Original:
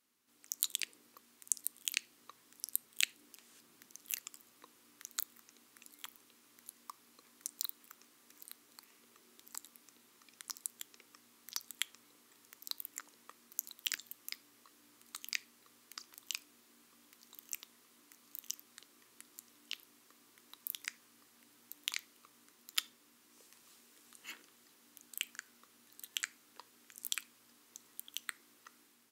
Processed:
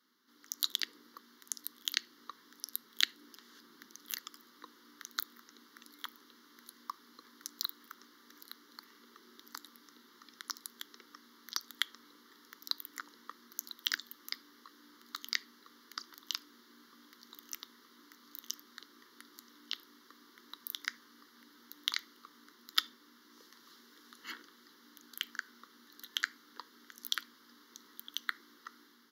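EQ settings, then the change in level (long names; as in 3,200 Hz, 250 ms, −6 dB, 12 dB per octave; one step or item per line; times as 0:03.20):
high-pass filter 210 Hz 24 dB per octave
high-shelf EQ 6,000 Hz −10 dB
phaser with its sweep stopped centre 2,500 Hz, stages 6
+10.5 dB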